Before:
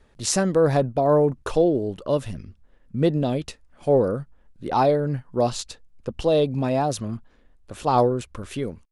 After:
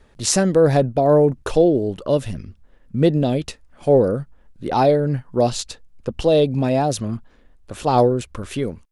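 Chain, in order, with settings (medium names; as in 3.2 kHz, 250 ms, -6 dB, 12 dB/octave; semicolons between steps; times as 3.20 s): dynamic bell 1.1 kHz, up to -6 dB, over -39 dBFS, Q 2.1; trim +4.5 dB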